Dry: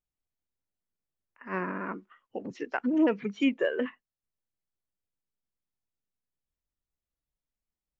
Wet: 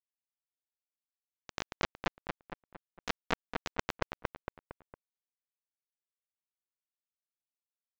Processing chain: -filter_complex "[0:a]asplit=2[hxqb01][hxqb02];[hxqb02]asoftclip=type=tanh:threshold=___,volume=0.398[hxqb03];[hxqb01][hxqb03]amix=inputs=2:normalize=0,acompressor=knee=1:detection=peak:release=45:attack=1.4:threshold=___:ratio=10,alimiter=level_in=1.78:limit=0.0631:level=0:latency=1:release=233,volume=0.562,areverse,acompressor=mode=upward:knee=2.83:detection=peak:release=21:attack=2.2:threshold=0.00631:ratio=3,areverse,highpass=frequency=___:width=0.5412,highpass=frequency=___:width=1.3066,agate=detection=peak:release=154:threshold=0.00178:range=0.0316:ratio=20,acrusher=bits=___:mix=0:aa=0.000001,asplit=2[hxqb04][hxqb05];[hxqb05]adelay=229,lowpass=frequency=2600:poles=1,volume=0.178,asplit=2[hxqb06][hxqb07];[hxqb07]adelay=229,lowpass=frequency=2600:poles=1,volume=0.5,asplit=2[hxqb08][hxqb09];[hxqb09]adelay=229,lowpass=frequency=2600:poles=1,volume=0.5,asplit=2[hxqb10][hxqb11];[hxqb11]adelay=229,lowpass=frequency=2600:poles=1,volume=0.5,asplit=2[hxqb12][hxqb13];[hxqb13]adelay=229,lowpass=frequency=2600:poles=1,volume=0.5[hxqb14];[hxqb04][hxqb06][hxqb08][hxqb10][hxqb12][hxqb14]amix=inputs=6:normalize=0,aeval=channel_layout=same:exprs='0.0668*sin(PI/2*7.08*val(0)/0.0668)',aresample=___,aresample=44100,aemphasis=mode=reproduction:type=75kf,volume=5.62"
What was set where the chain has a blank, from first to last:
0.0376, 0.0398, 320, 320, 4, 16000